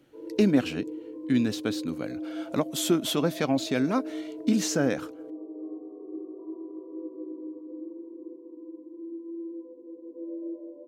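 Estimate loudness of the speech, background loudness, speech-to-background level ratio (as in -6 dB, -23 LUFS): -27.5 LUFS, -39.0 LUFS, 11.5 dB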